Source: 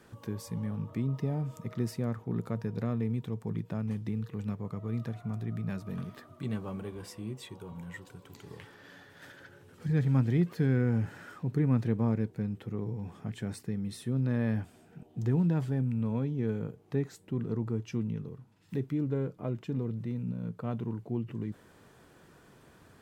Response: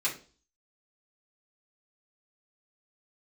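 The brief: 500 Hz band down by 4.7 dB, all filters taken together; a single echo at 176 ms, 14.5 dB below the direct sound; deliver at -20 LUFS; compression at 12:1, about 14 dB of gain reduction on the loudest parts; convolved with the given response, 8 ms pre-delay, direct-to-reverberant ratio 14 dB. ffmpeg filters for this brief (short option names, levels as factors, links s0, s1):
-filter_complex "[0:a]equalizer=f=500:t=o:g=-6,acompressor=threshold=0.0141:ratio=12,aecho=1:1:176:0.188,asplit=2[s0][s1];[1:a]atrim=start_sample=2205,adelay=8[s2];[s1][s2]afir=irnorm=-1:irlink=0,volume=0.0891[s3];[s0][s3]amix=inputs=2:normalize=0,volume=14.1"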